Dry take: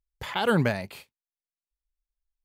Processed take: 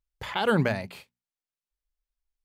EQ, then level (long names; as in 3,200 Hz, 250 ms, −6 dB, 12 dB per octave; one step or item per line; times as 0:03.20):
high-shelf EQ 8,500 Hz −6.5 dB
mains-hum notches 60/120/180/240 Hz
0.0 dB